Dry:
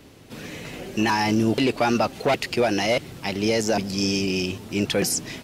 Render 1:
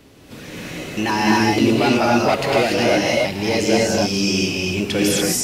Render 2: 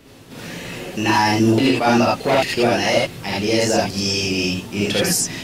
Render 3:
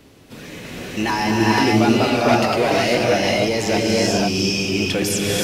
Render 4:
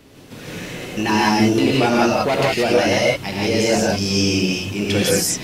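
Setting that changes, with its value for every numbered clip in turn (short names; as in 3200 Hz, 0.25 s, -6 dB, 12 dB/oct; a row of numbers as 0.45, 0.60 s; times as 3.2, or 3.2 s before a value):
non-linear reverb, gate: 0.31, 0.1, 0.52, 0.2 s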